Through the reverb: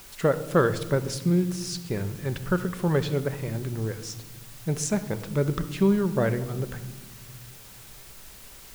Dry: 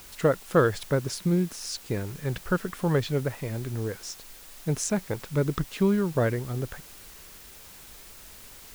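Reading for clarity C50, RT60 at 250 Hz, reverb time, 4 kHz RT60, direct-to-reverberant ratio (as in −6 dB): 13.0 dB, 2.4 s, 1.3 s, 0.85 s, 10.0 dB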